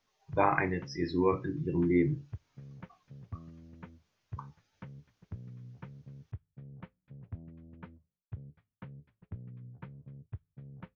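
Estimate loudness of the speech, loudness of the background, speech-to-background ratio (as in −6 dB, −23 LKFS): −30.5 LKFS, −49.5 LKFS, 19.0 dB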